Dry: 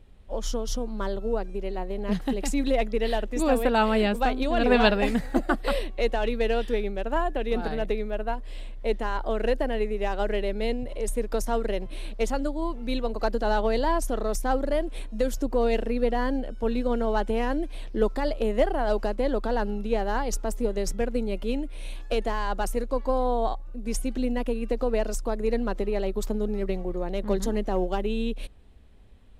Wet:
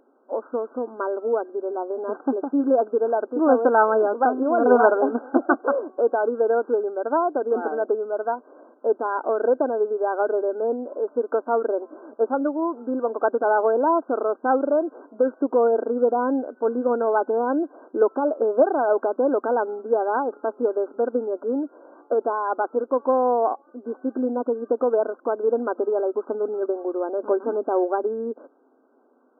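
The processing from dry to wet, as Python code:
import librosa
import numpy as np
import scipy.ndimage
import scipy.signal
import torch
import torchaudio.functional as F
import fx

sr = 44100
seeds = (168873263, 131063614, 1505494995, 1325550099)

y = fx.brickwall_bandpass(x, sr, low_hz=240.0, high_hz=1600.0)
y = y * 10.0 ** (6.0 / 20.0)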